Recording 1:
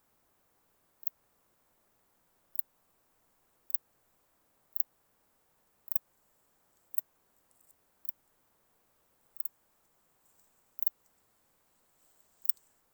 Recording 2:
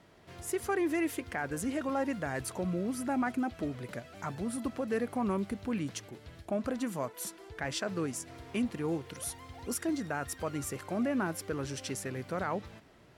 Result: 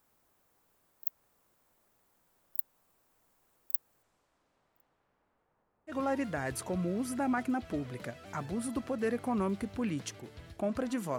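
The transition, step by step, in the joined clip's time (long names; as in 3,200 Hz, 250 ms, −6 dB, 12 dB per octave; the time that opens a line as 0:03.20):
recording 1
0:04.02–0:05.95: low-pass filter 8,000 Hz → 1,100 Hz
0:05.91: continue with recording 2 from 0:01.80, crossfade 0.08 s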